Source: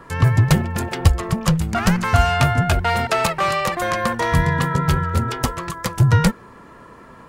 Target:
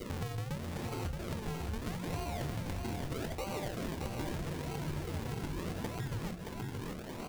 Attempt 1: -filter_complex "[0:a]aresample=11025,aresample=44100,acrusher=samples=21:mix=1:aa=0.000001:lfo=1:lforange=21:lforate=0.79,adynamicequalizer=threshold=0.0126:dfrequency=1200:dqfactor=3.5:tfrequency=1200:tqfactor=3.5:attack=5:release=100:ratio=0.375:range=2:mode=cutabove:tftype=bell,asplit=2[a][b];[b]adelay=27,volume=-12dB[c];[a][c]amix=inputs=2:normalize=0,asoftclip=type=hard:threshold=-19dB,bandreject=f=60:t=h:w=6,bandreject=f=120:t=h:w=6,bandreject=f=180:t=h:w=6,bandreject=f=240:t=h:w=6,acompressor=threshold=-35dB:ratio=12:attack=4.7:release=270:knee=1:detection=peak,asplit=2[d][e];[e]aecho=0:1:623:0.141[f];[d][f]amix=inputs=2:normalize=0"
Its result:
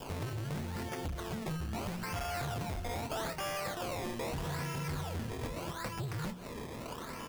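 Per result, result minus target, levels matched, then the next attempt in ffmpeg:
echo-to-direct -12 dB; hard clip: distortion +12 dB; decimation with a swept rate: distortion -4 dB
-filter_complex "[0:a]aresample=11025,aresample=44100,acrusher=samples=21:mix=1:aa=0.000001:lfo=1:lforange=21:lforate=0.79,adynamicequalizer=threshold=0.0126:dfrequency=1200:dqfactor=3.5:tfrequency=1200:tqfactor=3.5:attack=5:release=100:ratio=0.375:range=2:mode=cutabove:tftype=bell,asplit=2[a][b];[b]adelay=27,volume=-12dB[c];[a][c]amix=inputs=2:normalize=0,asoftclip=type=hard:threshold=-19dB,bandreject=f=60:t=h:w=6,bandreject=f=120:t=h:w=6,bandreject=f=180:t=h:w=6,bandreject=f=240:t=h:w=6,acompressor=threshold=-35dB:ratio=12:attack=4.7:release=270:knee=1:detection=peak,asplit=2[d][e];[e]aecho=0:1:623:0.562[f];[d][f]amix=inputs=2:normalize=0"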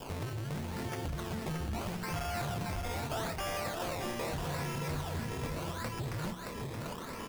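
hard clip: distortion +12 dB; decimation with a swept rate: distortion -4 dB
-filter_complex "[0:a]aresample=11025,aresample=44100,acrusher=samples=21:mix=1:aa=0.000001:lfo=1:lforange=21:lforate=0.79,adynamicequalizer=threshold=0.0126:dfrequency=1200:dqfactor=3.5:tfrequency=1200:tqfactor=3.5:attack=5:release=100:ratio=0.375:range=2:mode=cutabove:tftype=bell,asplit=2[a][b];[b]adelay=27,volume=-12dB[c];[a][c]amix=inputs=2:normalize=0,asoftclip=type=hard:threshold=-9dB,bandreject=f=60:t=h:w=6,bandreject=f=120:t=h:w=6,bandreject=f=180:t=h:w=6,bandreject=f=240:t=h:w=6,acompressor=threshold=-35dB:ratio=12:attack=4.7:release=270:knee=1:detection=peak,asplit=2[d][e];[e]aecho=0:1:623:0.562[f];[d][f]amix=inputs=2:normalize=0"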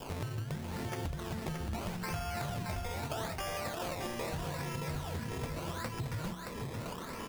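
decimation with a swept rate: distortion -4 dB
-filter_complex "[0:a]aresample=11025,aresample=44100,acrusher=samples=50:mix=1:aa=0.000001:lfo=1:lforange=50:lforate=0.79,adynamicequalizer=threshold=0.0126:dfrequency=1200:dqfactor=3.5:tfrequency=1200:tqfactor=3.5:attack=5:release=100:ratio=0.375:range=2:mode=cutabove:tftype=bell,asplit=2[a][b];[b]adelay=27,volume=-12dB[c];[a][c]amix=inputs=2:normalize=0,asoftclip=type=hard:threshold=-9dB,bandreject=f=60:t=h:w=6,bandreject=f=120:t=h:w=6,bandreject=f=180:t=h:w=6,bandreject=f=240:t=h:w=6,acompressor=threshold=-35dB:ratio=12:attack=4.7:release=270:knee=1:detection=peak,asplit=2[d][e];[e]aecho=0:1:623:0.562[f];[d][f]amix=inputs=2:normalize=0"

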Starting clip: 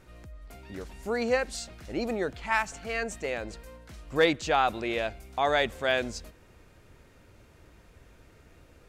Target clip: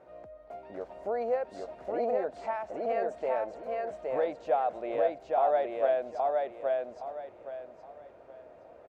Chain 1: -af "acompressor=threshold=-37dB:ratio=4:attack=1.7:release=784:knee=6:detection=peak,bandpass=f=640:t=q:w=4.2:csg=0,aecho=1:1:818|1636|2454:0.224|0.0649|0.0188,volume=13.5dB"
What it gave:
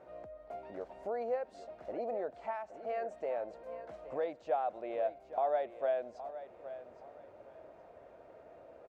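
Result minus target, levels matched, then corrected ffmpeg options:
echo-to-direct -10.5 dB; compressor: peak gain reduction +5.5 dB
-af "acompressor=threshold=-30dB:ratio=4:attack=1.7:release=784:knee=6:detection=peak,bandpass=f=640:t=q:w=4.2:csg=0,aecho=1:1:818|1636|2454|3272:0.75|0.217|0.0631|0.0183,volume=13.5dB"

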